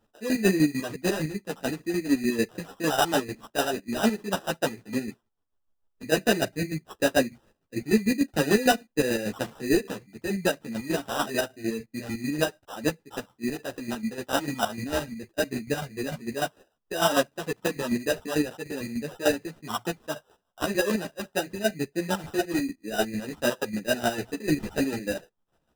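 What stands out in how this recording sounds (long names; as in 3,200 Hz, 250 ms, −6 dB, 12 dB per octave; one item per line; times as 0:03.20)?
chopped level 6.7 Hz, depth 60%, duty 35%
aliases and images of a low sample rate 2,200 Hz, jitter 0%
a shimmering, thickened sound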